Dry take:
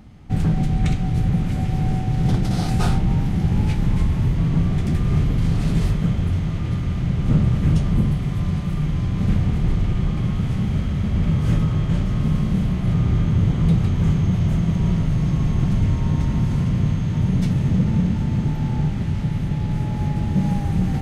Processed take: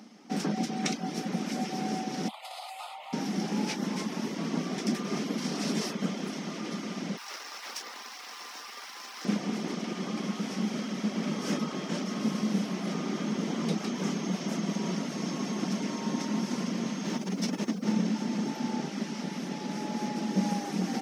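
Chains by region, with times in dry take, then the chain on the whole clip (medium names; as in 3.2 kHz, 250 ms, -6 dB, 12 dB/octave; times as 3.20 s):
2.28–3.13 s: elliptic high-pass 550 Hz + static phaser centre 1.6 kHz, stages 6 + compression 4:1, threshold -37 dBFS
7.17–9.25 s: steep high-pass 740 Hz 72 dB/octave + careless resampling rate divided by 3×, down filtered, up hold + loudspeaker Doppler distortion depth 0.7 ms
17.04–17.91 s: high-pass 94 Hz 24 dB/octave + compressor with a negative ratio -21 dBFS, ratio -0.5 + added noise brown -36 dBFS
whole clip: reverb removal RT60 0.51 s; elliptic high-pass 210 Hz, stop band 50 dB; peaking EQ 5.5 kHz +14.5 dB 0.45 oct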